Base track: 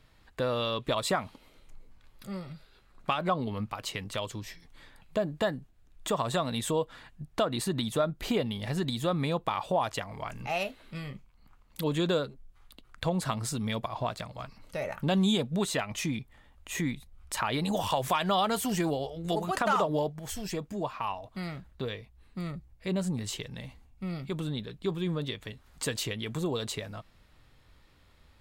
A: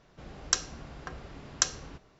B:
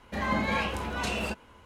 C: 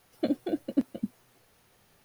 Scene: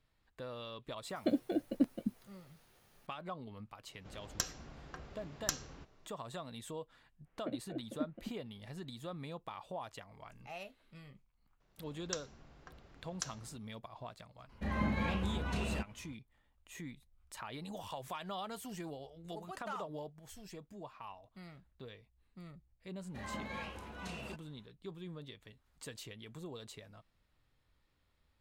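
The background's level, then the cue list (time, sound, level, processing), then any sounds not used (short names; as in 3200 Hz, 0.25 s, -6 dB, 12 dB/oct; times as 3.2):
base track -15.5 dB
1.03 add C -4 dB
3.87 add A -7 dB + one diode to ground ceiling -20 dBFS
7.23 add C -12.5 dB, fades 0.05 s + LPF 2500 Hz 24 dB/oct
11.6 add A -14.5 dB
14.49 add B -10 dB + tone controls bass +10 dB, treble -4 dB
23.02 add B -15 dB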